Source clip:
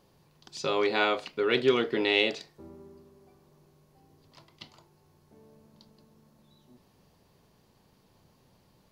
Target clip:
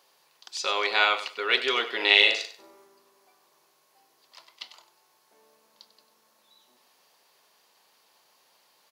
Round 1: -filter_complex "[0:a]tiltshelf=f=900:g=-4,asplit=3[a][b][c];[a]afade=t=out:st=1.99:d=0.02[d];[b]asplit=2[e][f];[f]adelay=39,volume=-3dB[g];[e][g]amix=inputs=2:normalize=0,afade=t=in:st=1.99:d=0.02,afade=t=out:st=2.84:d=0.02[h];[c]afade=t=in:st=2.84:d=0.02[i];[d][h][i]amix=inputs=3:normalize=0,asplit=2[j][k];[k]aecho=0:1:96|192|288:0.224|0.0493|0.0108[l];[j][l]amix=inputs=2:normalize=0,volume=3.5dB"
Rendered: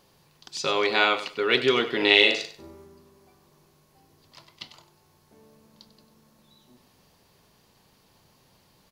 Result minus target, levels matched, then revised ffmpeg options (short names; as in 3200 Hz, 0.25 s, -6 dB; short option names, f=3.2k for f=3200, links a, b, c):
500 Hz band +5.5 dB
-filter_complex "[0:a]highpass=620,tiltshelf=f=900:g=-4,asplit=3[a][b][c];[a]afade=t=out:st=1.99:d=0.02[d];[b]asplit=2[e][f];[f]adelay=39,volume=-3dB[g];[e][g]amix=inputs=2:normalize=0,afade=t=in:st=1.99:d=0.02,afade=t=out:st=2.84:d=0.02[h];[c]afade=t=in:st=2.84:d=0.02[i];[d][h][i]amix=inputs=3:normalize=0,asplit=2[j][k];[k]aecho=0:1:96|192|288:0.224|0.0493|0.0108[l];[j][l]amix=inputs=2:normalize=0,volume=3.5dB"